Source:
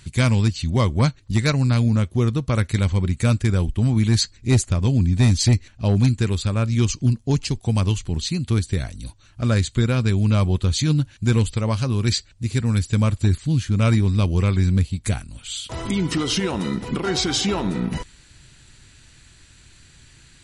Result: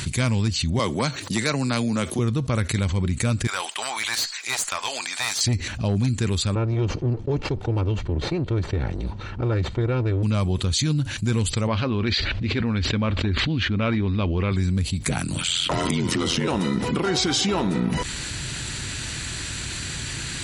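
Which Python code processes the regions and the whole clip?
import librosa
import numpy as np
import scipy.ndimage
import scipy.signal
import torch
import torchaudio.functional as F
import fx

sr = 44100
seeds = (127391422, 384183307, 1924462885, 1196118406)

y = fx.chain(x, sr, fx.bessel_highpass(hz=290.0, order=2),
    fx.high_shelf(hz=8300.0, db=5.5),
    fx.band_squash(depth_pct=40), at=(0.79, 2.19))
y = fx.chain(y, sr, fx.highpass(hz=820.0, slope=24),
    fx.tube_stage(drive_db=25.0, bias=0.5), at=(3.47, 5.41))
y = fx.chain(y, sr, fx.lower_of_two(delay_ms=2.2),
    fx.spacing_loss(db_at_10k=36), at=(6.55, 10.23))
y = fx.chain(y, sr, fx.lowpass(hz=3500.0, slope=24),
    fx.peak_eq(hz=130.0, db=-11.0, octaves=0.68),
    fx.sustainer(db_per_s=32.0), at=(11.67, 14.52))
y = fx.chain(y, sr, fx.ring_mod(carrier_hz=43.0),
    fx.band_squash(depth_pct=100), at=(15.06, 16.48))
y = fx.highpass(y, sr, hz=85.0, slope=6)
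y = fx.env_flatten(y, sr, amount_pct=70)
y = y * librosa.db_to_amplitude(-5.5)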